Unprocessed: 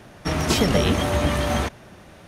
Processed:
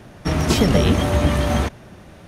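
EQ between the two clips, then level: low shelf 390 Hz +5.5 dB; 0.0 dB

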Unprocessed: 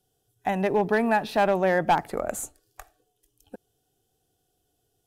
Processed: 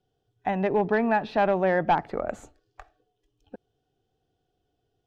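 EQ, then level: air absorption 200 m; 0.0 dB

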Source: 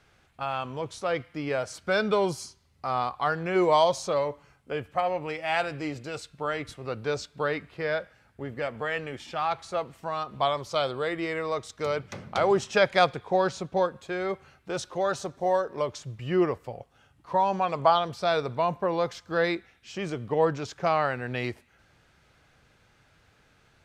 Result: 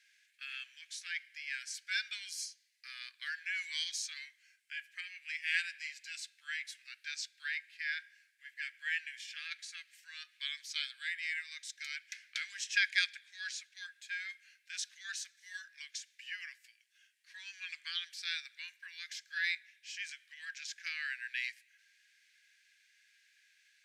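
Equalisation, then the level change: rippled Chebyshev high-pass 1600 Hz, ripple 3 dB; 0.0 dB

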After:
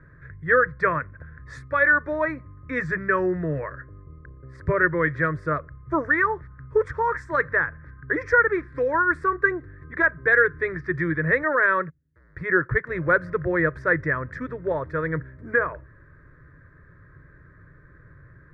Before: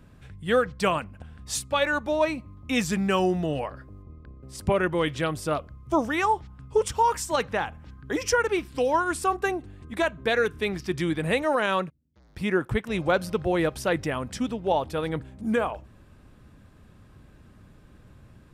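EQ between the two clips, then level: synth low-pass 1800 Hz, resonance Q 5.6; bell 160 Hz +13 dB 0.94 oct; fixed phaser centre 780 Hz, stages 6; 0.0 dB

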